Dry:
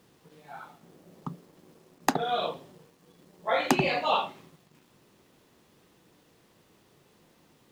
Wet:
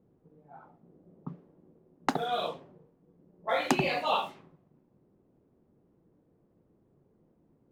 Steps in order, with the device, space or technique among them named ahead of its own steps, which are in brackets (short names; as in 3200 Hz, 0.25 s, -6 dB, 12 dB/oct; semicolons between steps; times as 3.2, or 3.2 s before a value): cassette deck with a dynamic noise filter (white noise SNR 25 dB; low-pass opened by the level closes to 400 Hz, open at -24.5 dBFS); gain -2.5 dB